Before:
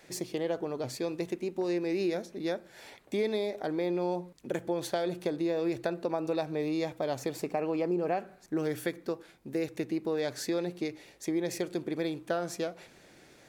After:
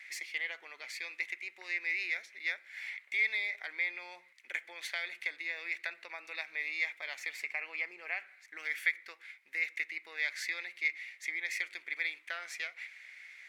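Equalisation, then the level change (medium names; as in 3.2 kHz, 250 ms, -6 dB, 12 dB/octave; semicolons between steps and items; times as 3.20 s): resonant high-pass 2.1 kHz, resonance Q 9.3; treble shelf 5.1 kHz -9.5 dB; 0.0 dB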